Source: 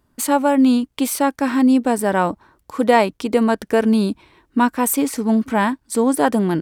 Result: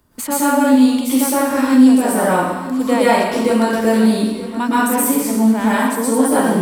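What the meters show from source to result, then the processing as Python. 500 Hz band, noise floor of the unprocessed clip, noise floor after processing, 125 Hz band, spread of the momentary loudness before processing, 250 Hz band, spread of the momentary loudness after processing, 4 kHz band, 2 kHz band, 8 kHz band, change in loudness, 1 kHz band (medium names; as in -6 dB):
+2.0 dB, -65 dBFS, -26 dBFS, +1.5 dB, 7 LU, +4.0 dB, 7 LU, +4.0 dB, +3.5 dB, +5.0 dB, +3.0 dB, +2.0 dB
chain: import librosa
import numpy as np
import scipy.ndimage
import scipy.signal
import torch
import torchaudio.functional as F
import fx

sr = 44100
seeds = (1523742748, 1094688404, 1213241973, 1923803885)

y = fx.high_shelf(x, sr, hz=6500.0, db=6.0)
y = y + 10.0 ** (-17.5 / 20.0) * np.pad(y, (int(926 * sr / 1000.0), 0))[:len(y)]
y = fx.rev_plate(y, sr, seeds[0], rt60_s=0.94, hf_ratio=0.9, predelay_ms=105, drr_db=-10.0)
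y = fx.band_squash(y, sr, depth_pct=40)
y = y * librosa.db_to_amplitude(-8.5)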